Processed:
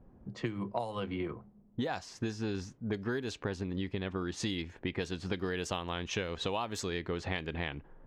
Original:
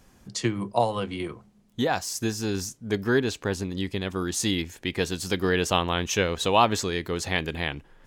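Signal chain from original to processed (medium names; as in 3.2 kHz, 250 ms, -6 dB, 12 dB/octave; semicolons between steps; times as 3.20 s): level-controlled noise filter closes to 620 Hz, open at -19 dBFS; compression 12:1, threshold -31 dBFS, peak gain reduction 17.5 dB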